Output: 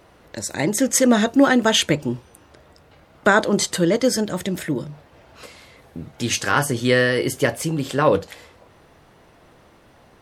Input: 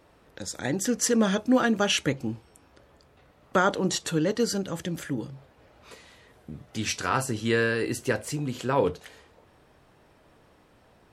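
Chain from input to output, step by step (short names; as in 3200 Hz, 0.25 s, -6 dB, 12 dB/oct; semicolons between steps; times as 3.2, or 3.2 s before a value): speed mistake 44.1 kHz file played as 48 kHz; gain +7 dB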